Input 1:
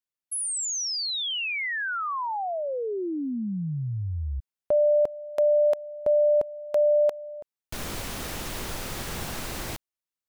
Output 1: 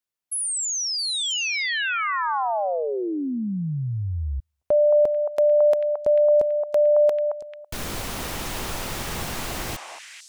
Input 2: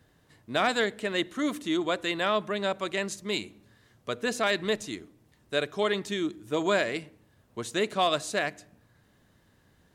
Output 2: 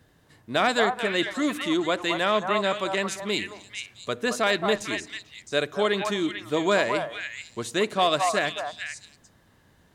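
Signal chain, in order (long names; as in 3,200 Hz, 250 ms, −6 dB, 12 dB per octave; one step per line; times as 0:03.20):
echo through a band-pass that steps 221 ms, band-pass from 910 Hz, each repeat 1.4 octaves, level −1 dB
level +3 dB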